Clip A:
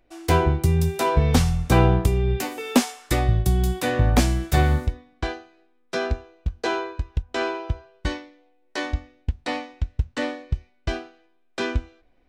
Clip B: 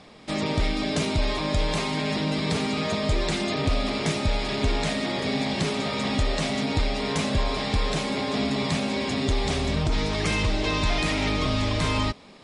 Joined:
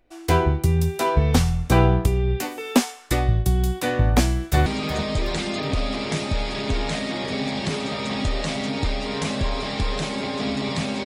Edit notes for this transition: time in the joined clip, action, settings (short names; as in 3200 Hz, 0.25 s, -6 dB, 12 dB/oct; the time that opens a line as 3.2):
clip A
4.27–4.66 echo throw 0.37 s, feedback 35%, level -13 dB
4.66 switch to clip B from 2.6 s